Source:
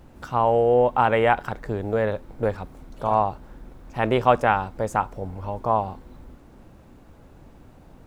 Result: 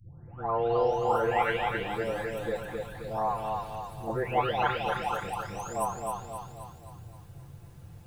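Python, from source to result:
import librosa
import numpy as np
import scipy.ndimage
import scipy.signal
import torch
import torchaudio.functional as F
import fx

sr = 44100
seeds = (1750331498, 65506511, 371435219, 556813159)

p1 = fx.spec_delay(x, sr, highs='late', ms=923)
p2 = fx.high_shelf(p1, sr, hz=2600.0, db=12.0)
p3 = p2 + fx.echo_feedback(p2, sr, ms=264, feedback_pct=50, wet_db=-3.5, dry=0)
p4 = fx.dmg_noise_band(p3, sr, seeds[0], low_hz=80.0, high_hz=150.0, level_db=-41.0)
y = F.gain(torch.from_numpy(p4), -7.5).numpy()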